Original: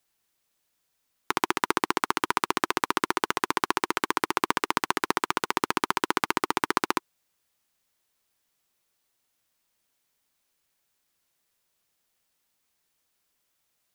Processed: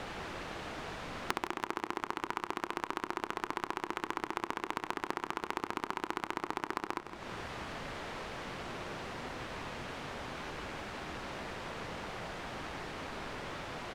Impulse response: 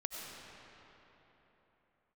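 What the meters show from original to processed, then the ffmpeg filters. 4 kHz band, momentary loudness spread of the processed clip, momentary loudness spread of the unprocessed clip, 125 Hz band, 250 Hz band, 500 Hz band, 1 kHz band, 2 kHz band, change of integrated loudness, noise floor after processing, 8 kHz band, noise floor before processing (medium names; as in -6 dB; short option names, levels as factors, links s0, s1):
-10.0 dB, 4 LU, 1 LU, -0.5 dB, -7.5 dB, -6.5 dB, -9.5 dB, -9.0 dB, -12.5 dB, -51 dBFS, -13.5 dB, -76 dBFS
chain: -filter_complex "[0:a]aeval=exprs='val(0)+0.5*0.0355*sgn(val(0))':c=same,acompressor=threshold=0.0178:ratio=20,asplit=2[s0][s1];[1:a]atrim=start_sample=2205,adelay=100[s2];[s1][s2]afir=irnorm=-1:irlink=0,volume=0.119[s3];[s0][s3]amix=inputs=2:normalize=0,adynamicsmooth=sensitivity=2.5:basefreq=1400,aecho=1:1:162|324|486|648|810:0.266|0.12|0.0539|0.0242|0.0109,volume=1.88"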